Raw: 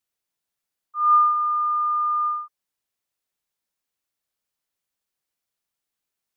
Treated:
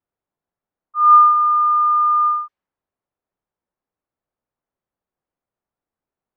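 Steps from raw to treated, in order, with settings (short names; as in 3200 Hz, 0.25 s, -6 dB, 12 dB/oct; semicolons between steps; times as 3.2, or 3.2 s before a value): low-pass opened by the level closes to 1000 Hz, open at -20 dBFS; gain +7 dB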